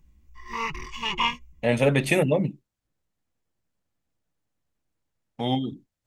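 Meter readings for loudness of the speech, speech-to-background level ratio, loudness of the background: -24.5 LUFS, 4.5 dB, -29.0 LUFS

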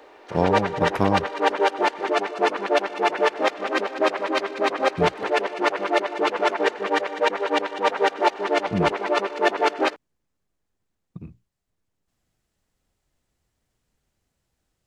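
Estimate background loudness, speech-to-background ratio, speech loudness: -23.0 LUFS, -4.0 dB, -27.0 LUFS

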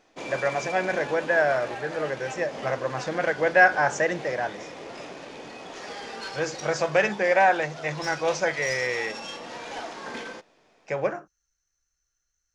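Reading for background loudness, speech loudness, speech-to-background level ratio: -37.0 LUFS, -25.0 LUFS, 12.0 dB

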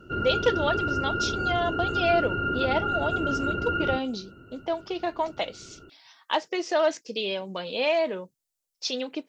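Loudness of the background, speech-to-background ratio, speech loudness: -28.0 LUFS, -1.0 dB, -29.0 LUFS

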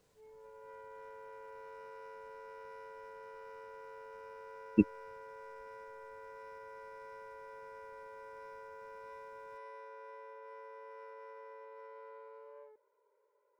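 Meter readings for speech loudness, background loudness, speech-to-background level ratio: -32.5 LUFS, -51.0 LUFS, 18.5 dB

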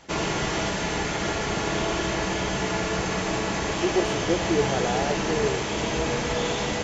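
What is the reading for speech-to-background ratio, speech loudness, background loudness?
-1.5 dB, -28.0 LUFS, -26.5 LUFS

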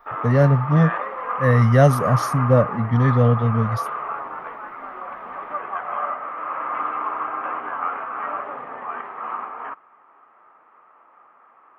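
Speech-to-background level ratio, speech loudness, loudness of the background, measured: 9.5 dB, -18.5 LUFS, -28.0 LUFS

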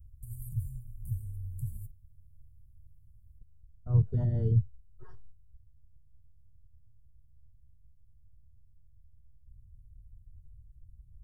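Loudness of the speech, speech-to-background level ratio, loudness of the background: -29.0 LUFS, 11.5 dB, -40.5 LUFS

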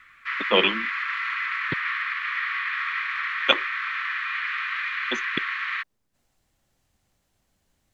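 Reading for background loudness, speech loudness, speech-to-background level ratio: -27.0 LUFS, -24.5 LUFS, 2.5 dB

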